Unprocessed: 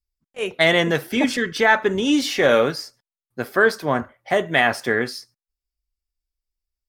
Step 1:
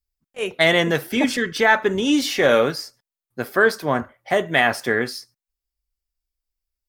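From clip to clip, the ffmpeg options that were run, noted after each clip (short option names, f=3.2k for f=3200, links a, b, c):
-af "highshelf=f=12k:g=6"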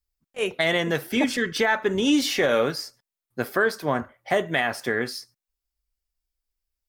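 -af "alimiter=limit=-11.5dB:level=0:latency=1:release=387"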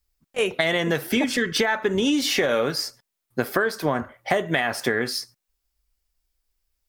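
-af "acompressor=threshold=-27dB:ratio=6,volume=8dB"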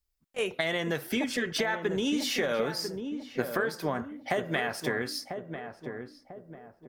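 -filter_complex "[0:a]asplit=2[a][b];[b]adelay=995,lowpass=f=830:p=1,volume=-6dB,asplit=2[c][d];[d]adelay=995,lowpass=f=830:p=1,volume=0.46,asplit=2[e][f];[f]adelay=995,lowpass=f=830:p=1,volume=0.46,asplit=2[g][h];[h]adelay=995,lowpass=f=830:p=1,volume=0.46,asplit=2[i][j];[j]adelay=995,lowpass=f=830:p=1,volume=0.46,asplit=2[k][l];[l]adelay=995,lowpass=f=830:p=1,volume=0.46[m];[a][c][e][g][i][k][m]amix=inputs=7:normalize=0,volume=-7.5dB"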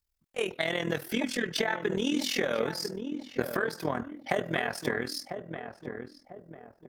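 -af "tremolo=f=41:d=0.788,volume=3dB"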